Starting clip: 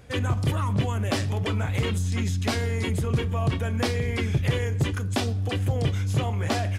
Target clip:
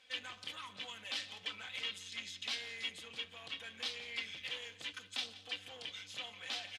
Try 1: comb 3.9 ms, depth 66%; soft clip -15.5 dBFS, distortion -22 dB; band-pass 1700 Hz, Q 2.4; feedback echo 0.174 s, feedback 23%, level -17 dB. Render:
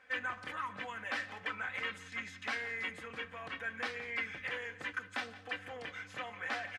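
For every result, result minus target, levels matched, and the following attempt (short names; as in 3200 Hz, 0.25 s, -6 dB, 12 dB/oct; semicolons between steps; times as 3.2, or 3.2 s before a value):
4000 Hz band -10.0 dB; soft clip: distortion -8 dB
comb 3.9 ms, depth 66%; soft clip -15.5 dBFS, distortion -22 dB; band-pass 3400 Hz, Q 2.4; feedback echo 0.174 s, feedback 23%, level -17 dB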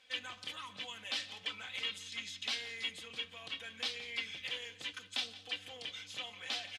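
soft clip: distortion -8 dB
comb 3.9 ms, depth 66%; soft clip -22.5 dBFS, distortion -13 dB; band-pass 3400 Hz, Q 2.4; feedback echo 0.174 s, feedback 23%, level -17 dB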